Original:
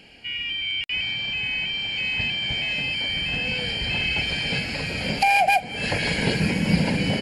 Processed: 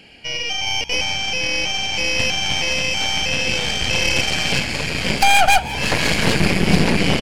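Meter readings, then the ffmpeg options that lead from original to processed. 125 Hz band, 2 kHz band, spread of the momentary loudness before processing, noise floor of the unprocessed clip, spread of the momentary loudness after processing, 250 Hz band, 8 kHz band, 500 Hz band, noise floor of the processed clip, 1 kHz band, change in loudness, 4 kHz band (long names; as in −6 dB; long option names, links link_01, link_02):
+4.0 dB, +4.5 dB, 6 LU, −35 dBFS, 6 LU, +4.5 dB, +16.0 dB, +7.0 dB, −26 dBFS, +4.5 dB, +5.0 dB, +5.5 dB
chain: -filter_complex "[0:a]aeval=exprs='0.447*(cos(1*acos(clip(val(0)/0.447,-1,1)))-cos(1*PI/2))+0.0891*(cos(8*acos(clip(val(0)/0.447,-1,1)))-cos(8*PI/2))':channel_layout=same,asplit=7[link_01][link_02][link_03][link_04][link_05][link_06][link_07];[link_02]adelay=172,afreqshift=66,volume=-18.5dB[link_08];[link_03]adelay=344,afreqshift=132,volume=-22.4dB[link_09];[link_04]adelay=516,afreqshift=198,volume=-26.3dB[link_10];[link_05]adelay=688,afreqshift=264,volume=-30.1dB[link_11];[link_06]adelay=860,afreqshift=330,volume=-34dB[link_12];[link_07]adelay=1032,afreqshift=396,volume=-37.9dB[link_13];[link_01][link_08][link_09][link_10][link_11][link_12][link_13]amix=inputs=7:normalize=0,volume=3.5dB"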